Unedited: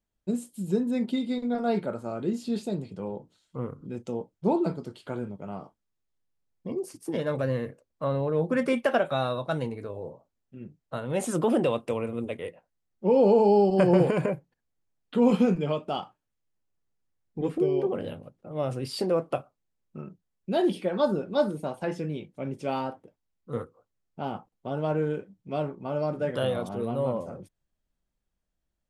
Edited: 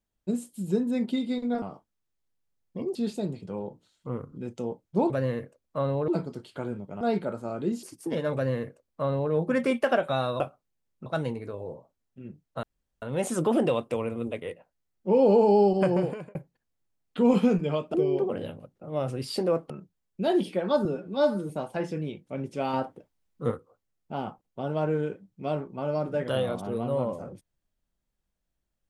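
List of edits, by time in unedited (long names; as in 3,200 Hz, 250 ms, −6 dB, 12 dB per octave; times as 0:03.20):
0:01.62–0:02.44: swap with 0:05.52–0:06.85
0:07.36–0:08.34: duplicate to 0:04.59
0:10.99: splice in room tone 0.39 s
0:13.64–0:14.32: fade out
0:15.91–0:17.57: remove
0:19.33–0:19.99: move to 0:09.42
0:21.14–0:21.57: time-stretch 1.5×
0:22.81–0:23.59: clip gain +4.5 dB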